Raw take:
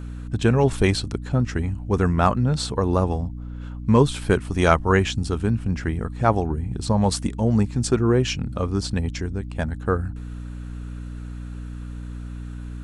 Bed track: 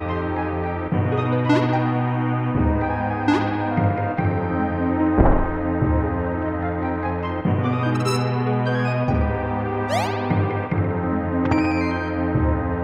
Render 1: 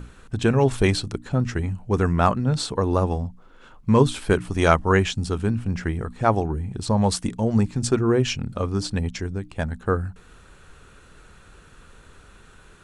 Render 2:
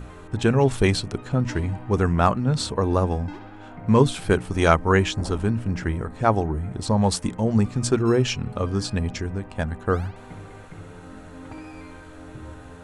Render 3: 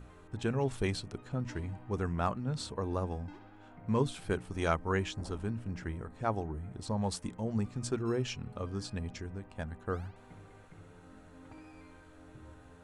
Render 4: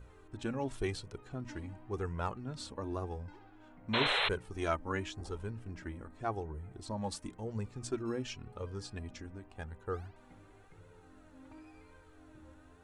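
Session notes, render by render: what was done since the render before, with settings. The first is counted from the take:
hum notches 60/120/180/240/300 Hz
add bed track -20 dB
trim -13 dB
flange 0.92 Hz, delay 1.9 ms, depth 1.8 ms, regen +24%; 3.93–4.29 s: painted sound noise 390–4200 Hz -31 dBFS

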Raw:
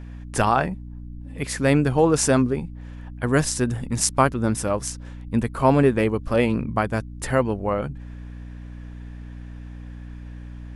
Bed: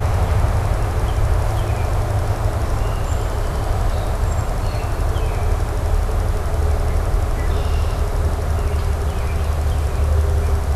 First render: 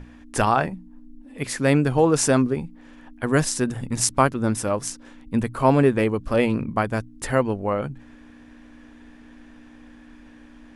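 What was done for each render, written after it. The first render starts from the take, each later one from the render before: hum notches 60/120/180 Hz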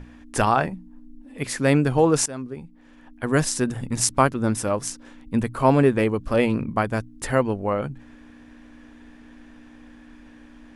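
2.26–3.46 s: fade in linear, from -19.5 dB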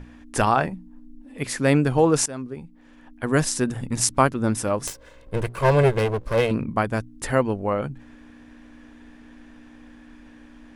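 4.87–6.51 s: comb filter that takes the minimum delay 1.9 ms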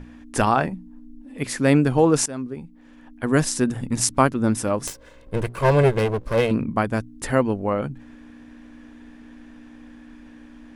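peaking EQ 250 Hz +3.5 dB 0.93 oct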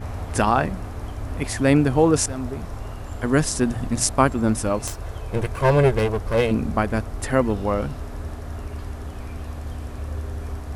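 add bed -13 dB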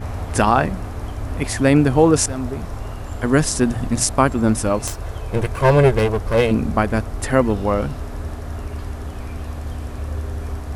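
trim +3.5 dB; peak limiter -2 dBFS, peak gain reduction 3 dB

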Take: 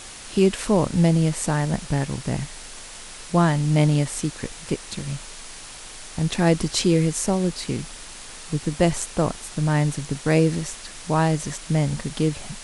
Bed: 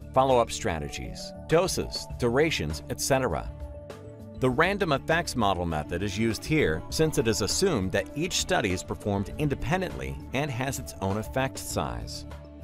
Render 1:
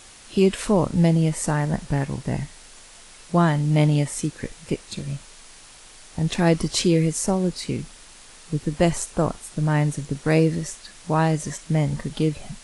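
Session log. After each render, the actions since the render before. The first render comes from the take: noise print and reduce 7 dB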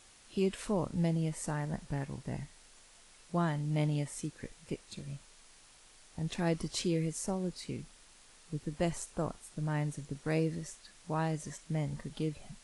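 trim -13 dB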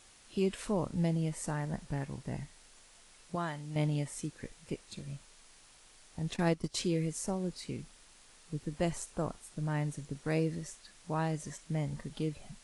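3.35–3.76 s: bass shelf 390 Hz -10 dB; 6.36–6.76 s: transient shaper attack +6 dB, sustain -11 dB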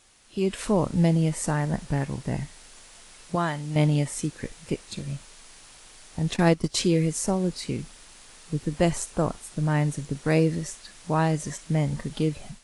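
level rider gain up to 10 dB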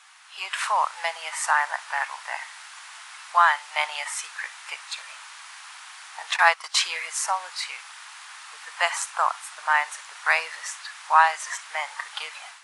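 steep high-pass 830 Hz 36 dB/octave; peaking EQ 1.3 kHz +14 dB 2.9 oct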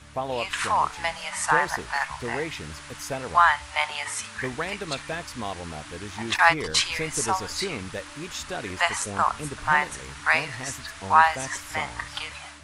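add bed -8 dB

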